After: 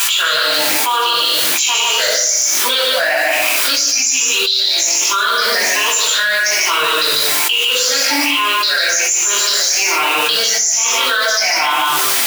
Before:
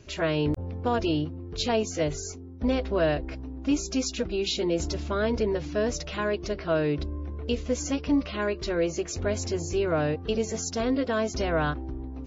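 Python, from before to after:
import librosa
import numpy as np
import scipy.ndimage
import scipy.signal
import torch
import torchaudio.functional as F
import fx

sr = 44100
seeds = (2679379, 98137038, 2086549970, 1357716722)

p1 = fx.spec_ripple(x, sr, per_octave=0.68, drift_hz=1.2, depth_db=17)
p2 = fx.tilt_eq(p1, sr, slope=3.0)
p3 = fx.quant_dither(p2, sr, seeds[0], bits=6, dither='triangular')
p4 = p2 + F.gain(torch.from_numpy(p3), -4.5).numpy()
p5 = scipy.signal.sosfilt(scipy.signal.butter(2, 1200.0, 'highpass', fs=sr, output='sos'), p4)
p6 = p5 + fx.echo_single(p5, sr, ms=146, db=-4.0, dry=0)
p7 = fx.room_shoebox(p6, sr, seeds[1], volume_m3=960.0, walls='furnished', distance_m=8.2)
p8 = fx.env_flatten(p7, sr, amount_pct=100)
y = F.gain(torch.from_numpy(p8), -11.5).numpy()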